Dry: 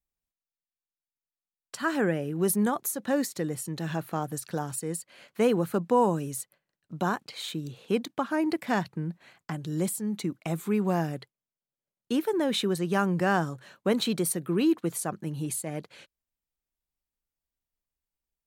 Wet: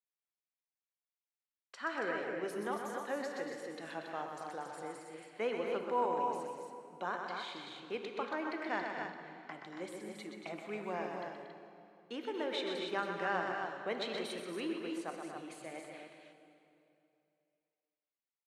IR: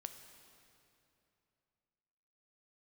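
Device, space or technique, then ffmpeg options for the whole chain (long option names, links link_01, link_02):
station announcement: -filter_complex "[0:a]highpass=460,lowpass=4000,equalizer=frequency=2100:width_type=o:width=0.32:gain=5,aecho=1:1:125.4|233.2|277:0.501|0.355|0.501[link_01];[1:a]atrim=start_sample=2205[link_02];[link_01][link_02]afir=irnorm=-1:irlink=0,volume=-4dB"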